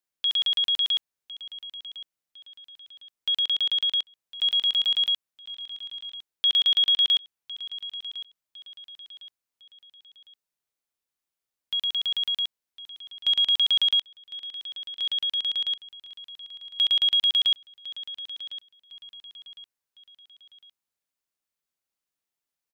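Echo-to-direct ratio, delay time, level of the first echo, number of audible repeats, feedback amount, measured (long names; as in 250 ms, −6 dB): −15.0 dB, 1,056 ms, −15.5 dB, 3, 39%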